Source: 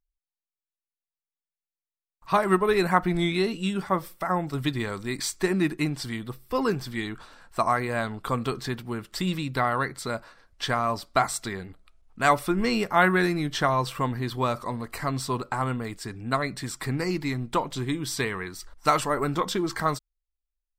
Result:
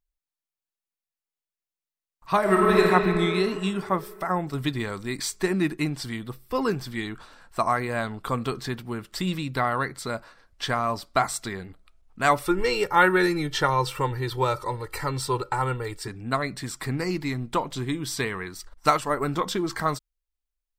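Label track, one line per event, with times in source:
2.390000	2.800000	thrown reverb, RT60 3 s, DRR −3 dB
12.450000	16.080000	comb filter 2.2 ms, depth 83%
18.540000	19.210000	transient designer attack +2 dB, sustain −5 dB

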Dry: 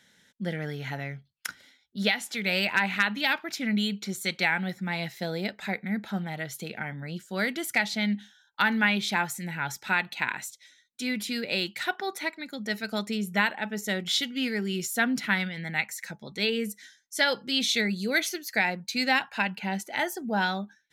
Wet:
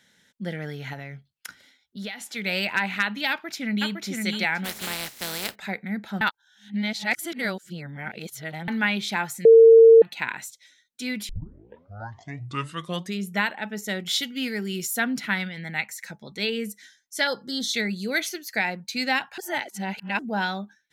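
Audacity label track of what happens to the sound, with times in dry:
0.930000	2.360000	downward compressor 3 to 1, threshold −33 dBFS
3.300000	3.930000	delay throw 510 ms, feedback 20%, level −3 dB
4.640000	5.540000	compressing power law on the bin magnitudes exponent 0.3
6.210000	8.680000	reverse
9.450000	10.020000	beep over 454 Hz −7.5 dBFS
11.290000	11.290000	tape start 1.99 s
14.030000	15.000000	high-shelf EQ 10,000 Hz +9 dB
17.270000	17.740000	Butterworth band-reject 2,500 Hz, Q 1.4
19.380000	20.190000	reverse

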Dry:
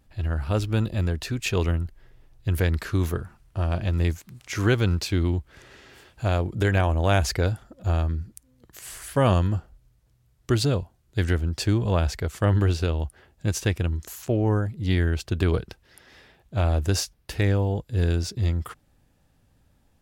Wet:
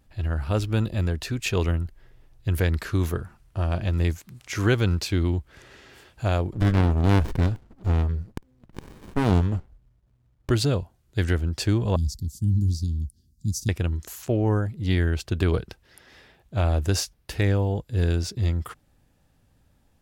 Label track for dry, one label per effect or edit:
6.530000	10.510000	windowed peak hold over 65 samples
11.960000	13.690000	elliptic band-stop filter 240–4,900 Hz

